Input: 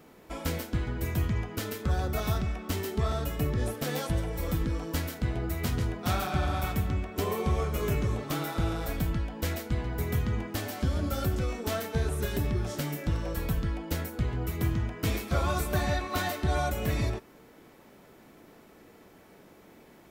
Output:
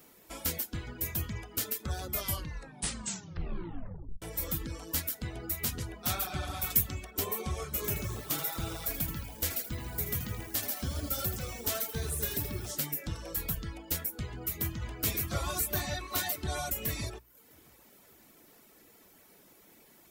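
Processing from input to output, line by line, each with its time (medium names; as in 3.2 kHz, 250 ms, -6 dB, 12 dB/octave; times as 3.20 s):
2.07 s: tape stop 2.15 s
6.70–7.11 s: treble shelf 4.2 kHz +10 dB
7.76–12.71 s: bit-crushed delay 80 ms, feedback 55%, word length 8-bit, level -6 dB
14.23–15.03 s: echo throw 580 ms, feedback 45%, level -2 dB
whole clip: reverb removal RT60 0.66 s; pre-emphasis filter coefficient 0.8; hum notches 60/120/180 Hz; trim +7 dB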